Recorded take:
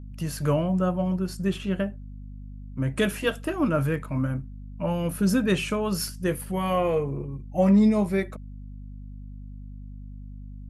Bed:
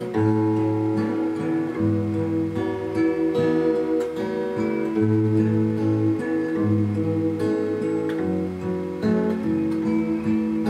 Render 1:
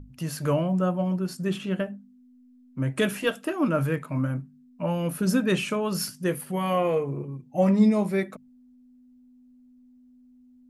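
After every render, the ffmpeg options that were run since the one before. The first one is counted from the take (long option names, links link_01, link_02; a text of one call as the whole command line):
ffmpeg -i in.wav -af "bandreject=frequency=50:width_type=h:width=6,bandreject=frequency=100:width_type=h:width=6,bandreject=frequency=150:width_type=h:width=6,bandreject=frequency=200:width_type=h:width=6" out.wav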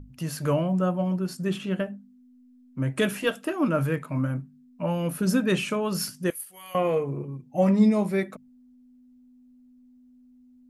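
ffmpeg -i in.wav -filter_complex "[0:a]asettb=1/sr,asplit=3[link_01][link_02][link_03];[link_01]atrim=end=6.304[link_04];[link_02]atrim=start=6.3:end=6.75,asetpts=PTS-STARTPTS,afade=type=in:duration=0.004:curve=qsin,afade=type=out:start_time=0.446:duration=0.004:curve=qsin,aderivative[link_05];[link_03]atrim=start=6.746[link_06];[link_04][link_05]acrossfade=duration=0.004:curve1=hsin:curve2=qsin[link_07];[link_07][link_06]acrossfade=duration=0.004:curve1=qsin:curve2=hsin" out.wav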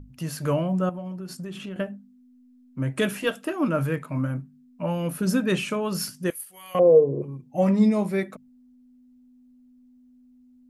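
ffmpeg -i in.wav -filter_complex "[0:a]asettb=1/sr,asplit=3[link_01][link_02][link_03];[link_01]atrim=end=0.894[link_04];[link_02]atrim=start=0.89:end=1.76,asetpts=PTS-STARTPTS,afade=type=in:duration=0.004:curve=qsin,afade=type=out:start_time=0.866:duration=0.004:curve=qsin,acompressor=threshold=-31dB:ratio=10:attack=3.2:release=140:knee=1:detection=peak[link_05];[link_03]atrim=start=1.756[link_06];[link_04][link_05]acrossfade=duration=0.004:curve1=hsin:curve2=qsin[link_07];[link_07][link_06]acrossfade=duration=0.004:curve1=qsin:curve2=hsin,asettb=1/sr,asplit=3[link_08][link_09][link_10];[link_08]atrim=end=6.794[link_11];[link_09]atrim=start=6.79:end=7.22,asetpts=PTS-STARTPTS,afade=type=in:duration=0.004:curve=qsin,afade=type=out:start_time=0.426:duration=0.004:curve=qsin,lowpass=frequency=500:width_type=q:width=3.6[link_12];[link_10]atrim=start=7.216[link_13];[link_11][link_12]acrossfade=duration=0.004:curve1=hsin:curve2=qsin[link_14];[link_14][link_13]acrossfade=duration=0.004:curve1=qsin:curve2=hsin" out.wav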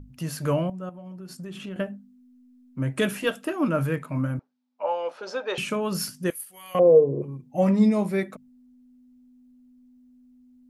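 ffmpeg -i in.wav -filter_complex "[0:a]asettb=1/sr,asplit=3[link_01][link_02][link_03];[link_01]atrim=end=4.394[link_04];[link_02]atrim=start=4.39:end=5.58,asetpts=PTS-STARTPTS,afade=type=in:duration=0.004:curve=qsin,afade=type=out:start_time=1.186:duration=0.004:curve=qsin,highpass=frequency=480:width=0.5412,highpass=frequency=480:width=1.3066,equalizer=frequency=500:width_type=q:width=4:gain=5,equalizer=frequency=840:width_type=q:width=4:gain=8,equalizer=frequency=1800:width_type=q:width=4:gain=-5,equalizer=frequency=2700:width_type=q:width=4:gain=-4,lowpass=frequency=5000:width=0.5412,lowpass=frequency=5000:width=1.3066[link_05];[link_03]atrim=start=5.576[link_06];[link_04][link_05]acrossfade=duration=0.004:curve1=hsin:curve2=qsin[link_07];[link_07][link_06]acrossfade=duration=0.004:curve1=qsin:curve2=hsin,asplit=2[link_08][link_09];[link_08]atrim=end=0.7,asetpts=PTS-STARTPTS,afade=type=out:start_time=0.696:duration=0.004:curve=hsin:silence=0.188365[link_10];[link_09]atrim=start=0.7,asetpts=PTS-STARTPTS,afade=type=in:duration=1.05:silence=0.188365[link_11];[link_10][link_11]concat=n=2:v=0:a=1" out.wav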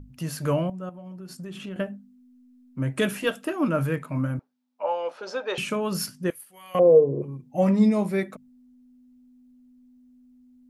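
ffmpeg -i in.wav -filter_complex "[0:a]asettb=1/sr,asplit=3[link_01][link_02][link_03];[link_01]atrim=end=6.064[link_04];[link_02]atrim=start=6.06:end=6.74,asetpts=PTS-STARTPTS,afade=type=in:duration=0.004:curve=qsin,afade=type=out:start_time=0.676:duration=0.004:curve=qsin,highshelf=frequency=3900:gain=-8.5[link_05];[link_03]atrim=start=6.736[link_06];[link_04][link_05]acrossfade=duration=0.004:curve1=hsin:curve2=qsin[link_07];[link_07][link_06]acrossfade=duration=0.004:curve1=qsin:curve2=hsin" out.wav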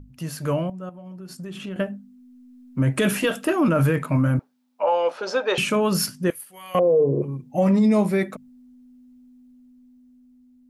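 ffmpeg -i in.wav -af "dynaudnorm=framelen=920:gausssize=5:maxgain=11.5dB,alimiter=limit=-12dB:level=0:latency=1:release=19" out.wav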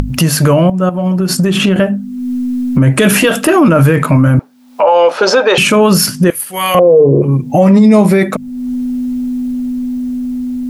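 ffmpeg -i in.wav -af "acompressor=mode=upward:threshold=-21dB:ratio=2.5,alimiter=level_in=17.5dB:limit=-1dB:release=50:level=0:latency=1" out.wav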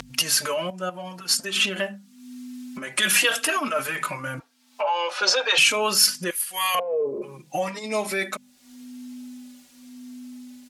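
ffmpeg -i in.wav -filter_complex "[0:a]bandpass=frequency=5200:width_type=q:width=0.54:csg=0,asplit=2[link_01][link_02];[link_02]adelay=3.8,afreqshift=-0.91[link_03];[link_01][link_03]amix=inputs=2:normalize=1" out.wav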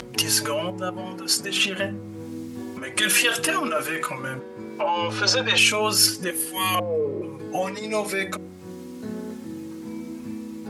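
ffmpeg -i in.wav -i bed.wav -filter_complex "[1:a]volume=-13dB[link_01];[0:a][link_01]amix=inputs=2:normalize=0" out.wav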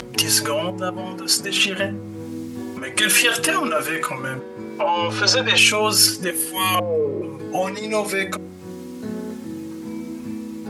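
ffmpeg -i in.wav -af "volume=3.5dB,alimiter=limit=-2dB:level=0:latency=1" out.wav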